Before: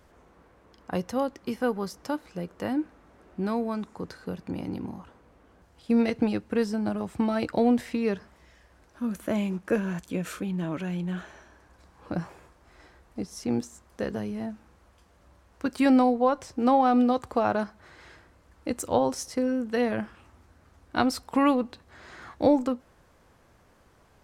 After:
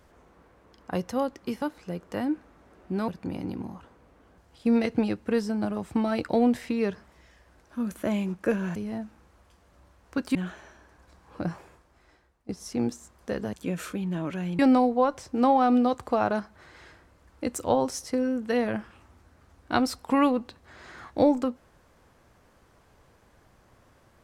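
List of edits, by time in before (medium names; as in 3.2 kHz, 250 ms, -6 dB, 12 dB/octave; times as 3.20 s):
1.62–2.10 s: delete
3.56–4.32 s: delete
10.00–11.06 s: swap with 14.24–15.83 s
12.22–13.20 s: fade out, to -20 dB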